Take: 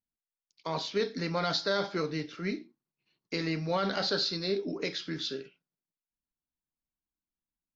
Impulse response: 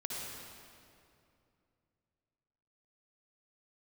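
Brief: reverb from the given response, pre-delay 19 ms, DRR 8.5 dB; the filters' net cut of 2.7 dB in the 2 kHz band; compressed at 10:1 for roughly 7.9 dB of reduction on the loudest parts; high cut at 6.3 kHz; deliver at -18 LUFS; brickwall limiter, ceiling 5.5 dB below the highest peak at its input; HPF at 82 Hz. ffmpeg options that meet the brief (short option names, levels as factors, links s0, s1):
-filter_complex "[0:a]highpass=82,lowpass=6300,equalizer=f=2000:t=o:g=-3.5,acompressor=threshold=0.0224:ratio=10,alimiter=level_in=1.88:limit=0.0631:level=0:latency=1,volume=0.531,asplit=2[s0][s1];[1:a]atrim=start_sample=2205,adelay=19[s2];[s1][s2]afir=irnorm=-1:irlink=0,volume=0.299[s3];[s0][s3]amix=inputs=2:normalize=0,volume=11.2"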